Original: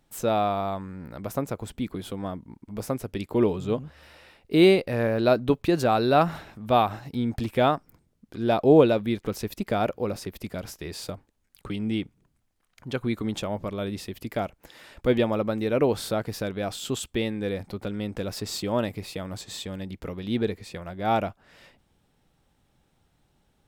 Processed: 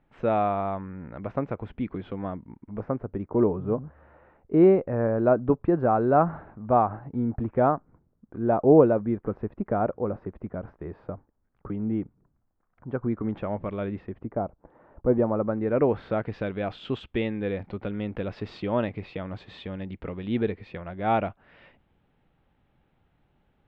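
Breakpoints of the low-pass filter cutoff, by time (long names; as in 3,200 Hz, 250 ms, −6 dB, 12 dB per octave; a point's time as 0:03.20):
low-pass filter 24 dB per octave
0:02.47 2,400 Hz
0:03.08 1,400 Hz
0:13.09 1,400 Hz
0:13.74 2,700 Hz
0:14.38 1,100 Hz
0:15.06 1,100 Hz
0:16.38 2,900 Hz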